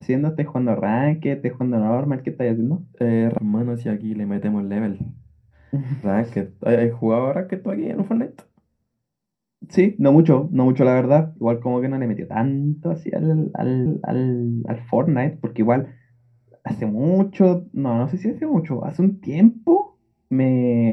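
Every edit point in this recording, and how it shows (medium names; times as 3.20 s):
3.38 s: sound stops dead
13.86 s: repeat of the last 0.49 s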